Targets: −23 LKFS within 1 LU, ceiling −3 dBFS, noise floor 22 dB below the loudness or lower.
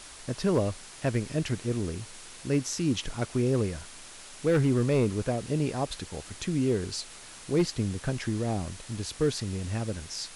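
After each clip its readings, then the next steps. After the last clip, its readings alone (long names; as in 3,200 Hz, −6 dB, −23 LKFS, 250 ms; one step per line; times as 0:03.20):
share of clipped samples 0.4%; peaks flattened at −17.5 dBFS; background noise floor −47 dBFS; target noise floor −52 dBFS; integrated loudness −29.5 LKFS; sample peak −17.5 dBFS; target loudness −23.0 LKFS
→ clipped peaks rebuilt −17.5 dBFS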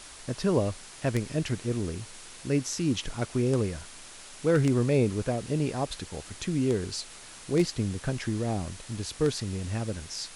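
share of clipped samples 0.0%; background noise floor −47 dBFS; target noise floor −52 dBFS
→ broadband denoise 6 dB, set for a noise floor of −47 dBFS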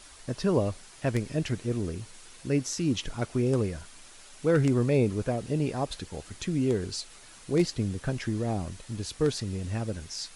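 background noise floor −51 dBFS; target noise floor −52 dBFS
→ broadband denoise 6 dB, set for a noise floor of −51 dBFS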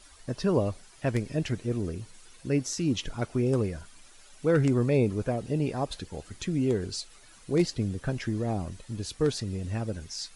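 background noise floor −54 dBFS; integrated loudness −29.5 LKFS; sample peak −10.0 dBFS; target loudness −23.0 LKFS
→ level +6.5 dB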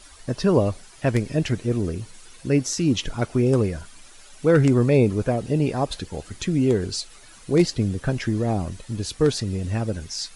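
integrated loudness −23.0 LKFS; sample peak −3.5 dBFS; background noise floor −47 dBFS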